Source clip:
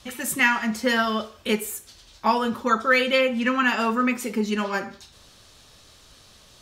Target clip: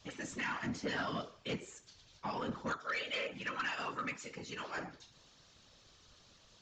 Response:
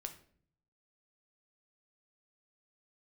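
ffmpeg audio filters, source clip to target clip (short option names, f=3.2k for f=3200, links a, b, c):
-filter_complex "[0:a]asettb=1/sr,asplit=3[a][b][c];[a]atrim=end=2.734[d];[b]atrim=start=2.73:end=4.78,asetpts=PTS-STARTPTS,afade=t=in:d=0.004:c=qsin,afade=t=out:st=2.046:d=0.004:c=qsin,highpass=f=980:p=1[e];[c]atrim=start=4.776[f];[d][e]acrossfade=d=0.004:c1=hsin:c2=qsin[g];[g][f]acrossfade=d=0.004:c1=qsin:c2=hsin,alimiter=limit=-13.5dB:level=0:latency=1:release=244,afftfilt=real='hypot(re,im)*cos(2*PI*random(0))':imag='hypot(re,im)*sin(2*PI*random(1))':win_size=512:overlap=0.75,asoftclip=type=tanh:threshold=-25dB,aresample=16000,aresample=44100,volume=-5dB"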